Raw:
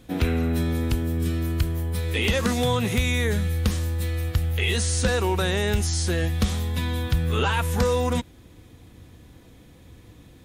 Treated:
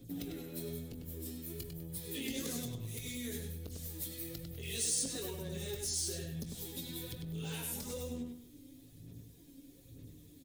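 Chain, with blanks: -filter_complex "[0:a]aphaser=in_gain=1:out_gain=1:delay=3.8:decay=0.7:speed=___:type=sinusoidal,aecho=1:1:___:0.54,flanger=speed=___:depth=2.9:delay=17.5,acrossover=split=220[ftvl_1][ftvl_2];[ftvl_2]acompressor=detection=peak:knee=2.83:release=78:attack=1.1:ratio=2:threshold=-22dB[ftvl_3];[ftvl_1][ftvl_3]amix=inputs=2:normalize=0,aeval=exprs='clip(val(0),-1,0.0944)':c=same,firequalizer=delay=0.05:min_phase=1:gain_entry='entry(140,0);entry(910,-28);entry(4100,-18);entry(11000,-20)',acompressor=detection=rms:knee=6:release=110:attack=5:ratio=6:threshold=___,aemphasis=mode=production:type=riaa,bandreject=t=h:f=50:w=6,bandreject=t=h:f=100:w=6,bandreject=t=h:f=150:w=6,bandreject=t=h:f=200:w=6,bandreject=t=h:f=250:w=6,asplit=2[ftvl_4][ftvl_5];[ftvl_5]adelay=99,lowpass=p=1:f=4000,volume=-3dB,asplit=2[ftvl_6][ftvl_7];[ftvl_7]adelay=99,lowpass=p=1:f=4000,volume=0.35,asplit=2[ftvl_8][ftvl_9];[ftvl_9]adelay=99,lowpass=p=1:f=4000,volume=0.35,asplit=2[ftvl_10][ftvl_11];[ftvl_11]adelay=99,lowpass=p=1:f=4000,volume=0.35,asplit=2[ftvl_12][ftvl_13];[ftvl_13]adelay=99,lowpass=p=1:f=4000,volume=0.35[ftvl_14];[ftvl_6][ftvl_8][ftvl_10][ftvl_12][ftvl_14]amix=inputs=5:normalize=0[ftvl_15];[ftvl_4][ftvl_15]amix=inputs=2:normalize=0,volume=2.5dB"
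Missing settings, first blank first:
1.1, 7.2, 0.43, -33dB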